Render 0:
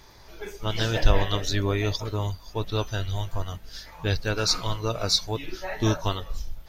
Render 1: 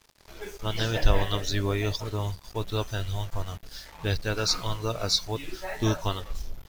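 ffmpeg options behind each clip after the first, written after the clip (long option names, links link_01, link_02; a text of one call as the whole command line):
ffmpeg -i in.wav -af "acrusher=bits=6:mix=0:aa=0.5,volume=-2dB" out.wav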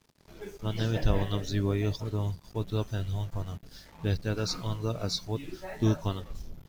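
ffmpeg -i in.wav -af "equalizer=frequency=180:width=0.5:gain=12,volume=-8.5dB" out.wav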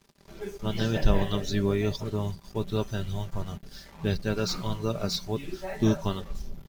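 ffmpeg -i in.wav -filter_complex "[0:a]aecho=1:1:5.1:0.42,acrossover=split=3500[link_01][link_02];[link_02]volume=33dB,asoftclip=hard,volume=-33dB[link_03];[link_01][link_03]amix=inputs=2:normalize=0,volume=3dB" out.wav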